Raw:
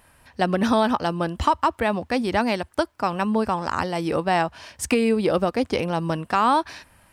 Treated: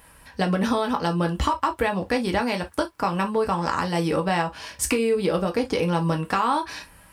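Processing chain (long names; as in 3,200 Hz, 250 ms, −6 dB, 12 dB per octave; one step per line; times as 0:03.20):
high-shelf EQ 8,900 Hz +4.5 dB
notch filter 700 Hz, Q 12
downward compressor, threshold −23 dBFS, peak gain reduction 8.5 dB
convolution reverb, pre-delay 3 ms, DRR 3.5 dB
level +2.5 dB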